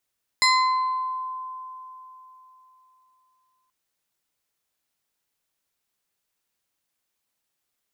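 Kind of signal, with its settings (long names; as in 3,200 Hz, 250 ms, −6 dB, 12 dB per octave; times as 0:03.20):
two-operator FM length 3.28 s, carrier 1,030 Hz, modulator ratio 2.99, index 1.8, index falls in 1.09 s exponential, decay 3.53 s, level −14.5 dB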